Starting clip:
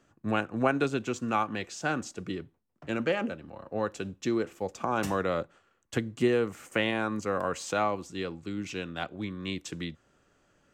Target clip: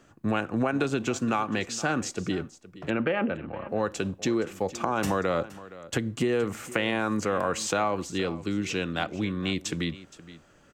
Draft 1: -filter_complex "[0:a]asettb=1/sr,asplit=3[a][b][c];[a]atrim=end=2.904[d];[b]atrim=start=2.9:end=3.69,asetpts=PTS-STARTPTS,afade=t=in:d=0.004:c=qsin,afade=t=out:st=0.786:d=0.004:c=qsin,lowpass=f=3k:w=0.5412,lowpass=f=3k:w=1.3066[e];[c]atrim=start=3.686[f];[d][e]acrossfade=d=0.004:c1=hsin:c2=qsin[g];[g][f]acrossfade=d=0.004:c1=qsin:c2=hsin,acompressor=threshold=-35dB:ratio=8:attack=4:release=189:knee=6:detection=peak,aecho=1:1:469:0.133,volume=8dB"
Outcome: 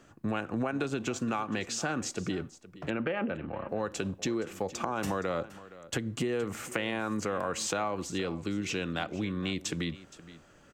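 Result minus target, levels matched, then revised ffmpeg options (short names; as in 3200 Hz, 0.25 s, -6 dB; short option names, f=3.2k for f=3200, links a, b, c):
compressor: peak gain reduction +5.5 dB
-filter_complex "[0:a]asettb=1/sr,asplit=3[a][b][c];[a]atrim=end=2.904[d];[b]atrim=start=2.9:end=3.69,asetpts=PTS-STARTPTS,afade=t=in:d=0.004:c=qsin,afade=t=out:st=0.786:d=0.004:c=qsin,lowpass=f=3k:w=0.5412,lowpass=f=3k:w=1.3066[e];[c]atrim=start=3.686[f];[d][e]acrossfade=d=0.004:c1=hsin:c2=qsin[g];[g][f]acrossfade=d=0.004:c1=qsin:c2=hsin,acompressor=threshold=-28.5dB:ratio=8:attack=4:release=189:knee=6:detection=peak,aecho=1:1:469:0.133,volume=8dB"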